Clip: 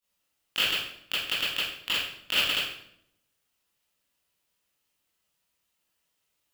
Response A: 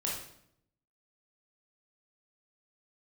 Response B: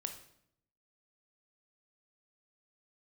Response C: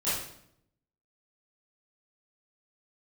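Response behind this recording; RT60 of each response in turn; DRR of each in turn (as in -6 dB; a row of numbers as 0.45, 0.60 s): C; 0.70, 0.70, 0.70 s; -4.0, 6.0, -13.5 dB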